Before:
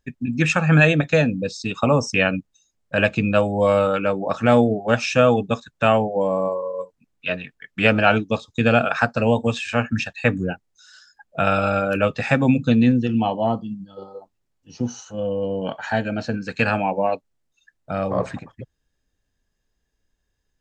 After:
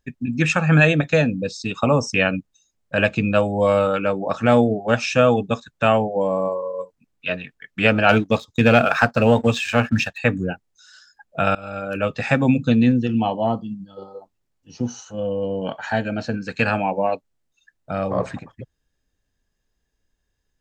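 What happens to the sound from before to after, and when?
8.09–10.18 s: waveshaping leveller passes 1
11.55–12.25 s: fade in, from -22 dB

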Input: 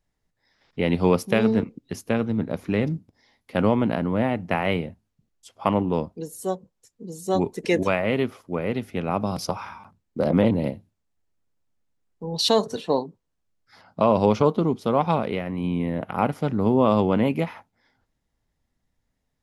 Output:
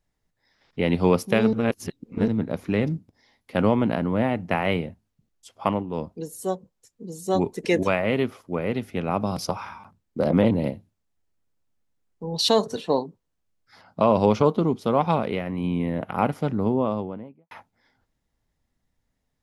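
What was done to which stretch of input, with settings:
1.53–2.28 s: reverse
5.63–6.12 s: dip -9.5 dB, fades 0.24 s
16.28–17.51 s: studio fade out

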